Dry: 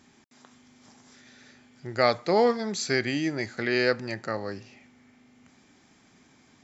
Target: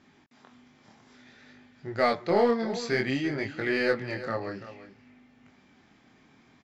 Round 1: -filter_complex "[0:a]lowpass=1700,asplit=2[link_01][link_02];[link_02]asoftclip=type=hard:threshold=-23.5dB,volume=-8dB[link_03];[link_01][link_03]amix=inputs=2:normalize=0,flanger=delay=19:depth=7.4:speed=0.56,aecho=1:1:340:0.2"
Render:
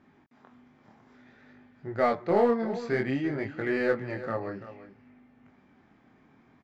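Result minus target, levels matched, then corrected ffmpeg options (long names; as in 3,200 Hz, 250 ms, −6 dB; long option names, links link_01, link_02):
4,000 Hz band −10.0 dB
-filter_complex "[0:a]lowpass=3800,asplit=2[link_01][link_02];[link_02]asoftclip=type=hard:threshold=-23.5dB,volume=-8dB[link_03];[link_01][link_03]amix=inputs=2:normalize=0,flanger=delay=19:depth=7.4:speed=0.56,aecho=1:1:340:0.2"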